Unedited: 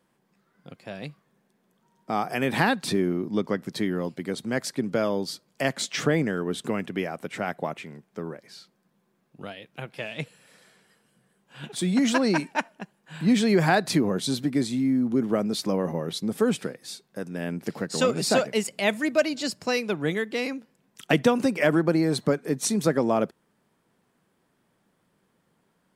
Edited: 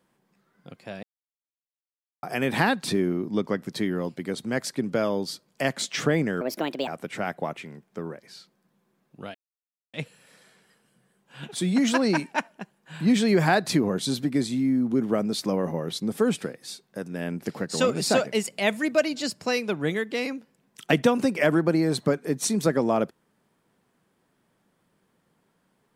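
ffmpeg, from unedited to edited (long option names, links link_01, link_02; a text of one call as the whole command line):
ffmpeg -i in.wav -filter_complex "[0:a]asplit=7[link_01][link_02][link_03][link_04][link_05][link_06][link_07];[link_01]atrim=end=1.03,asetpts=PTS-STARTPTS,afade=type=out:start_time=1.026:duration=0.004:curve=hsin[link_08];[link_02]atrim=start=1.03:end=2.23,asetpts=PTS-STARTPTS,volume=0[link_09];[link_03]atrim=start=2.23:end=6.414,asetpts=PTS-STARTPTS,afade=type=in:duration=0.004:curve=hsin[link_10];[link_04]atrim=start=6.41:end=7.08,asetpts=PTS-STARTPTS,asetrate=63504,aresample=44100[link_11];[link_05]atrim=start=7.076:end=9.55,asetpts=PTS-STARTPTS,afade=type=out:start_time=2.47:duration=0.004:curve=hsin[link_12];[link_06]atrim=start=9.55:end=10.14,asetpts=PTS-STARTPTS,volume=0[link_13];[link_07]atrim=start=10.14,asetpts=PTS-STARTPTS,afade=type=in:duration=0.004:curve=hsin[link_14];[link_08][link_09][link_10]concat=n=3:v=0:a=1[link_15];[link_15][link_11]acrossfade=duration=0.004:curve1=hsin:curve2=hsin[link_16];[link_12][link_13][link_14]concat=n=3:v=0:a=1[link_17];[link_16][link_17]acrossfade=duration=0.004:curve1=hsin:curve2=hsin" out.wav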